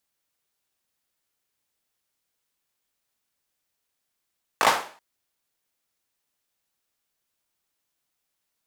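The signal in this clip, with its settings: hand clap length 0.38 s, apart 19 ms, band 890 Hz, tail 0.43 s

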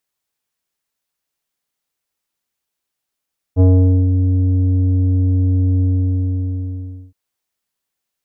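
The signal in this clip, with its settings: synth note square F#2 24 dB/oct, low-pass 330 Hz, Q 0.78, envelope 1 oct, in 0.57 s, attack 42 ms, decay 0.47 s, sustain -5.5 dB, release 1.32 s, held 2.25 s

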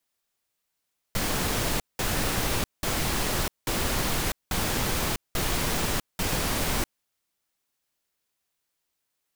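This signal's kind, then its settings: noise bursts pink, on 0.65 s, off 0.19 s, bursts 7, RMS -26.5 dBFS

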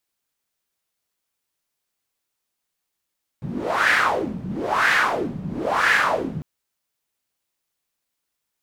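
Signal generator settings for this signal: wind-like swept noise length 3.00 s, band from 160 Hz, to 1800 Hz, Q 4, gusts 3, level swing 13 dB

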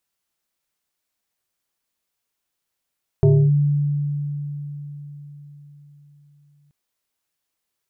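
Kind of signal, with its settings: FM tone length 3.48 s, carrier 145 Hz, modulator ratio 1.76, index 1.1, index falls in 0.28 s linear, decay 4.54 s, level -9.5 dB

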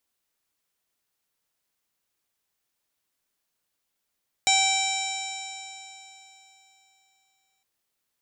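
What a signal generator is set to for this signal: stretched partials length 3.16 s, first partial 772 Hz, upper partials -19.5/0/-8.5/0/-19.5/-4/-17/0/-11/-19 dB, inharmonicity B 0.00055, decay 3.32 s, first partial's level -23 dB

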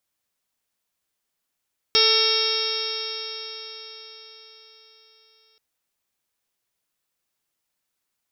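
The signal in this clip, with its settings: stretched partials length 3.63 s, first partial 439 Hz, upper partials -13/-5/-11.5/-4.5/-4/-2/3/-5/-1/5.5 dB, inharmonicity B 0.0023, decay 4.76 s, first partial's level -23 dB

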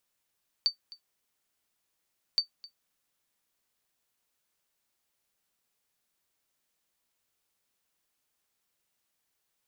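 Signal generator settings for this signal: sonar ping 4580 Hz, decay 0.11 s, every 1.72 s, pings 2, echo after 0.26 s, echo -21 dB -16 dBFS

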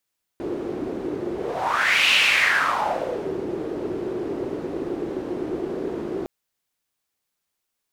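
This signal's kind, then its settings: whoosh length 5.86 s, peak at 1.71, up 0.83 s, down 1.33 s, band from 360 Hz, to 2700 Hz, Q 4.6, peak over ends 11 dB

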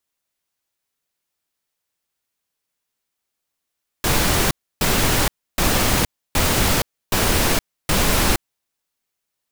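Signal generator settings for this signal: noise bursts pink, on 0.47 s, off 0.30 s, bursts 6, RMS -17.5 dBFS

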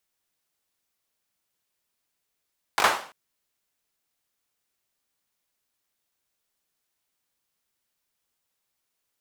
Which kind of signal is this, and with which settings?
hand clap length 0.34 s, apart 20 ms, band 940 Hz, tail 0.45 s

